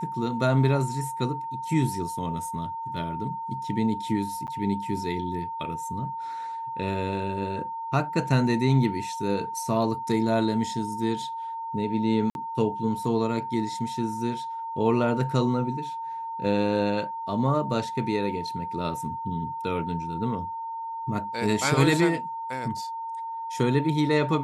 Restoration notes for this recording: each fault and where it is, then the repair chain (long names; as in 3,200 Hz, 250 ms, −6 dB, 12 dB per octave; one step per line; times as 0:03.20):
whistle 910 Hz −31 dBFS
0:04.47–0:04.48: drop-out 8.8 ms
0:12.30–0:12.35: drop-out 51 ms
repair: notch filter 910 Hz, Q 30
repair the gap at 0:04.47, 8.8 ms
repair the gap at 0:12.30, 51 ms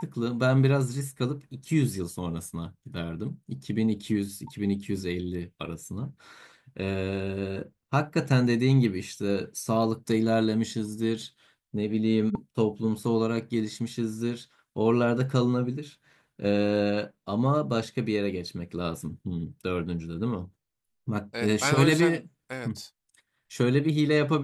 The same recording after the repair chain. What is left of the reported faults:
none of them is left